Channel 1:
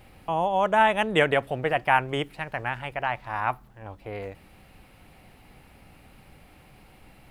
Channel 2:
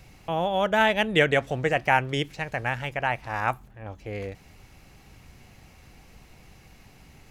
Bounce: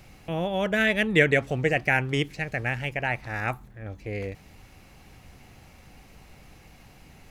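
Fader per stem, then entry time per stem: −4.5, −0.5 decibels; 0.00, 0.00 seconds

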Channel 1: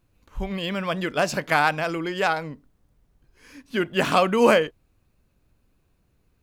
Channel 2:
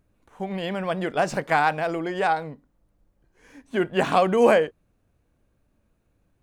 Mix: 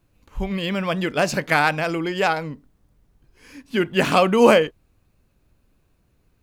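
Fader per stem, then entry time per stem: +2.5, −8.0 decibels; 0.00, 0.00 seconds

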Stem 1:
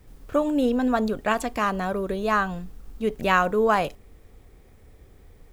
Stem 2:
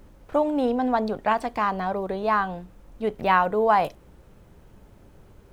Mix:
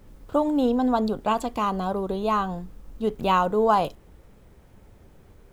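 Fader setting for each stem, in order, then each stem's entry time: −5.0, −2.5 decibels; 0.00, 0.00 seconds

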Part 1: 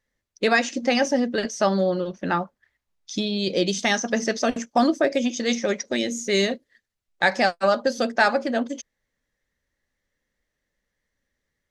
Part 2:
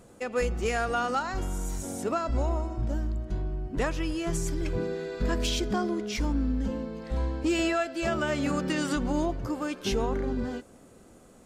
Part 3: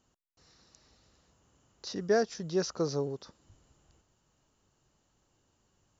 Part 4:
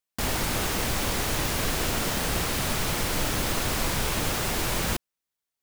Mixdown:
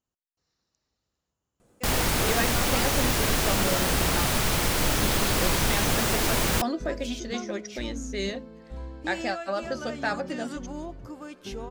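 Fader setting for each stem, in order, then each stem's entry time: −10.0, −9.0, −16.0, +2.5 decibels; 1.85, 1.60, 0.00, 1.65 seconds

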